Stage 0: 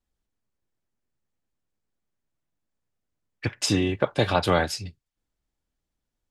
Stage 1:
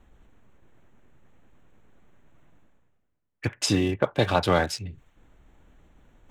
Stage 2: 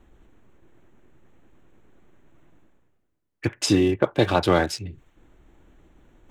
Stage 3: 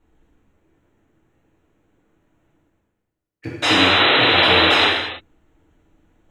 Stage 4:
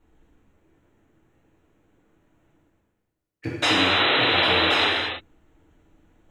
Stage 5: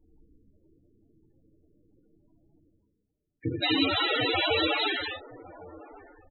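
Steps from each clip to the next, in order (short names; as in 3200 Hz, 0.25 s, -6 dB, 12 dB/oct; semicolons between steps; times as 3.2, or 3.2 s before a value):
Wiener smoothing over 9 samples; reverse; upward compressor, threshold -33 dBFS; reverse
bell 340 Hz +7.5 dB 0.48 oct; gain +1 dB
painted sound noise, 3.62–4.87, 250–4100 Hz -12 dBFS; non-linear reverb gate 0.35 s falling, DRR -5.5 dB; gain -9.5 dB
compressor 2.5:1, threshold -19 dBFS, peak gain reduction 6.5 dB
outdoor echo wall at 190 m, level -19 dB; loudest bins only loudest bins 16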